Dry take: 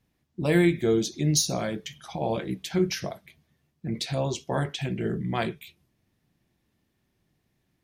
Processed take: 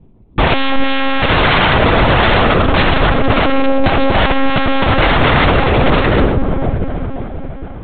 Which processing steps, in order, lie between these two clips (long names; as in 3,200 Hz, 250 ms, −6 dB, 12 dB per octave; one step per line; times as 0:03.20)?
adaptive Wiener filter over 25 samples
low-pass filter 1,600 Hz 12 dB per octave
low-shelf EQ 150 Hz +8.5 dB
asymmetric clip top −24.5 dBFS, bottom −12.5 dBFS
feedback delay with all-pass diffusion 646 ms, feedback 42%, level −4 dB
floating-point word with a short mantissa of 4 bits
wrap-around overflow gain 26.5 dB
convolution reverb RT60 1.4 s, pre-delay 40 ms, DRR 5 dB
one-pitch LPC vocoder at 8 kHz 270 Hz
boost into a limiter +24.5 dB
level −1 dB